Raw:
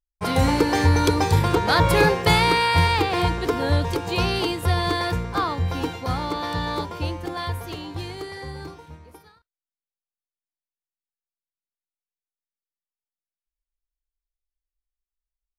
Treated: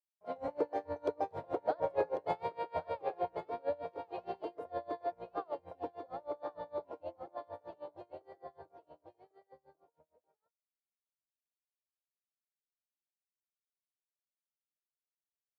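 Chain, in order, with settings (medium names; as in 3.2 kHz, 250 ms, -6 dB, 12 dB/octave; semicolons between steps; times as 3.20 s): band-pass filter 610 Hz, Q 7.5; on a send: delay 1095 ms -7.5 dB; on the sum: logarithmic tremolo 6.5 Hz, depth 28 dB; trim +3 dB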